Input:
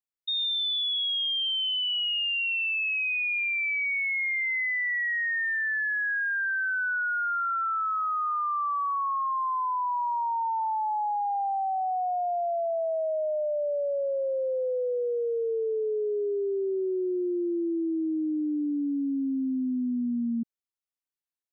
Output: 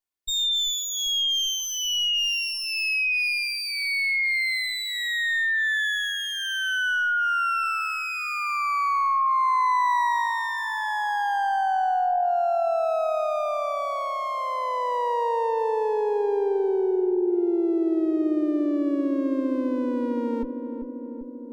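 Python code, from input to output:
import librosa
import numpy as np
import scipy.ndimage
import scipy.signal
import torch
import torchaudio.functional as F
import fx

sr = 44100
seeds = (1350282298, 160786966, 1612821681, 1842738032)

y = fx.lower_of_two(x, sr, delay_ms=2.8)
y = fx.peak_eq(y, sr, hz=940.0, db=6.0, octaves=0.24)
y = fx.echo_filtered(y, sr, ms=392, feedback_pct=75, hz=980.0, wet_db=-8.0)
y = y * 10.0 ** (4.5 / 20.0)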